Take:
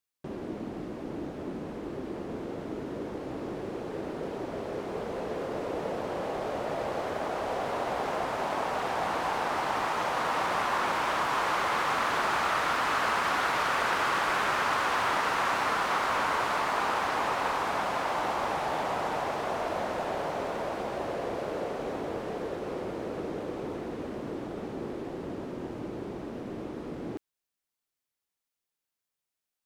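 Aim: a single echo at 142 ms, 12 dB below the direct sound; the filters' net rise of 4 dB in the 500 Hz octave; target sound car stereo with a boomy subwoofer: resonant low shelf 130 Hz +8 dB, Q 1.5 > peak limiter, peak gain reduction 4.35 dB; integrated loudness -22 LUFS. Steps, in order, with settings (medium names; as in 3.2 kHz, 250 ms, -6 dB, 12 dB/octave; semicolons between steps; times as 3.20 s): resonant low shelf 130 Hz +8 dB, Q 1.5; peaking EQ 500 Hz +5.5 dB; delay 142 ms -12 dB; trim +7.5 dB; peak limiter -10.5 dBFS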